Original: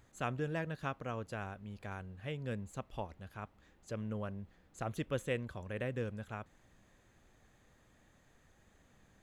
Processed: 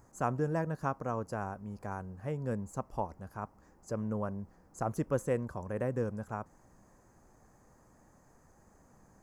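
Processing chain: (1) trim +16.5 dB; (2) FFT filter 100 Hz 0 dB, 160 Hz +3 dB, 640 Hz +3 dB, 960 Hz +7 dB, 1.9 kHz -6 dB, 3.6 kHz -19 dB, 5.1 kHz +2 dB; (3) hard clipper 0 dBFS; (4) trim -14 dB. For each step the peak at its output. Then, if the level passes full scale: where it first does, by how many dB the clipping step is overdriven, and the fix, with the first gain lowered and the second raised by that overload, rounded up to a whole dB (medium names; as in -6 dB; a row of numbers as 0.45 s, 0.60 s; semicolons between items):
-5.0 dBFS, -3.0 dBFS, -3.0 dBFS, -17.0 dBFS; nothing clips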